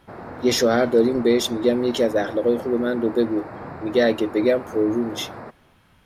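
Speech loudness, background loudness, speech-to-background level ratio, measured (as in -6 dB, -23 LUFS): -21.0 LUFS, -36.5 LUFS, 15.5 dB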